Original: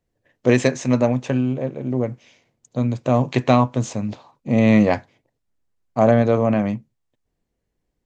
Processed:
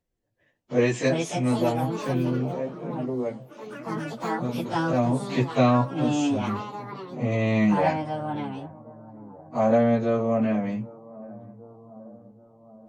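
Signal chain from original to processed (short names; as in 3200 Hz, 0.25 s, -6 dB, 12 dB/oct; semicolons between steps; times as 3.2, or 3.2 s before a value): echoes that change speed 0.345 s, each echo +5 st, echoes 3, each echo -6 dB; analogue delay 0.486 s, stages 4096, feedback 59%, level -20 dB; plain phase-vocoder stretch 1.6×; gain -3.5 dB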